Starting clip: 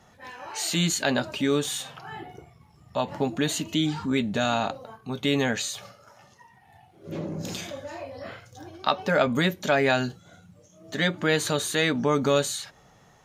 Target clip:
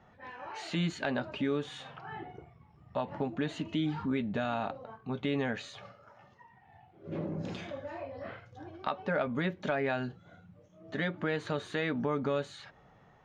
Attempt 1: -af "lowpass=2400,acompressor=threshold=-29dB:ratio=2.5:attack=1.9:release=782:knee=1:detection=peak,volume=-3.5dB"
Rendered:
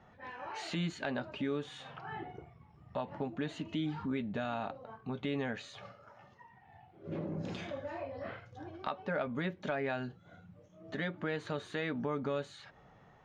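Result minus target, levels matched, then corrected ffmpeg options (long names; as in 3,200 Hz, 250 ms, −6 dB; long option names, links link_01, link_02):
downward compressor: peak gain reduction +4 dB
-af "lowpass=2400,acompressor=threshold=-22.5dB:ratio=2.5:attack=1.9:release=782:knee=1:detection=peak,volume=-3.5dB"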